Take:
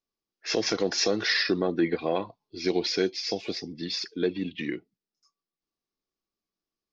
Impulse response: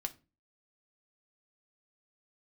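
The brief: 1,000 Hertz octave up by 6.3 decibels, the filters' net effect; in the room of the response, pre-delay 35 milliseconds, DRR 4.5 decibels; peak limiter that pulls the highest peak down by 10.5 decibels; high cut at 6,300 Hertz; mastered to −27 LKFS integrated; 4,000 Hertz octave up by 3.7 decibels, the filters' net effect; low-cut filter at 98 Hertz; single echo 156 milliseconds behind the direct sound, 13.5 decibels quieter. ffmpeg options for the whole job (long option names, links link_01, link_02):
-filter_complex "[0:a]highpass=98,lowpass=6300,equalizer=frequency=1000:width_type=o:gain=8.5,equalizer=frequency=4000:width_type=o:gain=5.5,alimiter=limit=-19.5dB:level=0:latency=1,aecho=1:1:156:0.211,asplit=2[link_01][link_02];[1:a]atrim=start_sample=2205,adelay=35[link_03];[link_02][link_03]afir=irnorm=-1:irlink=0,volume=-4dB[link_04];[link_01][link_04]amix=inputs=2:normalize=0,volume=1.5dB"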